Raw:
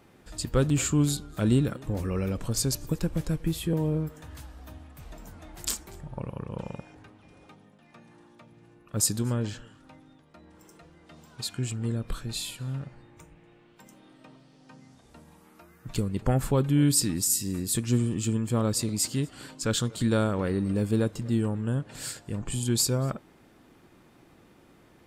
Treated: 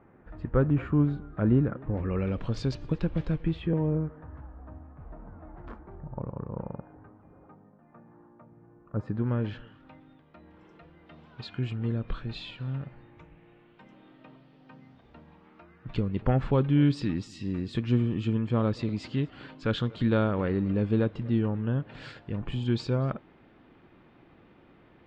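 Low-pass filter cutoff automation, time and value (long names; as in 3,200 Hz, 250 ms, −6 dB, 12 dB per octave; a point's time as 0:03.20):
low-pass filter 24 dB per octave
0:01.82 1,800 Hz
0:02.43 3,600 Hz
0:03.33 3,600 Hz
0:04.29 1,400 Hz
0:08.95 1,400 Hz
0:09.57 3,300 Hz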